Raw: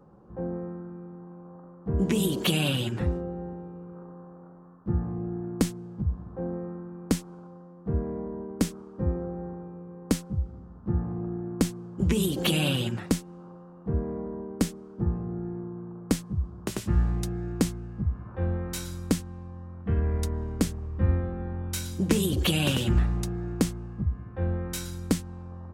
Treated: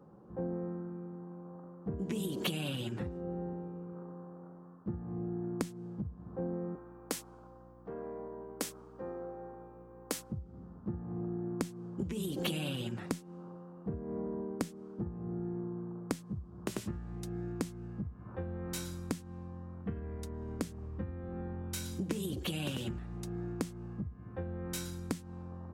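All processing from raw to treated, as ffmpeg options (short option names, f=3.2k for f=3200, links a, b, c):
-filter_complex "[0:a]asettb=1/sr,asplit=3[a][b][c];[a]atrim=end=6.754[d];[b]atrim=start=6.75:end=10.32,asetpts=PTS-STARTPTS,afade=t=in:d=0.004:c=qsin,afade=t=out:st=3.566:d=0.004:c=qsin,highpass=530,highshelf=f=12k:g=9.5,aeval=exprs='val(0)+0.00282*(sin(2*PI*60*n/s)+sin(2*PI*2*60*n/s)/2+sin(2*PI*3*60*n/s)/3+sin(2*PI*4*60*n/s)/4+sin(2*PI*5*60*n/s)/5)':c=same[e];[c]atrim=start=10.316[f];[d][e]acrossfade=d=0.004:c1=hsin:c2=qsin[g];[g][f]acrossfade=d=0.004:c1=qsin:c2=hsin,lowshelf=f=360:g=9,acompressor=threshold=-24dB:ratio=10,highpass=f=270:p=1,volume=-4dB"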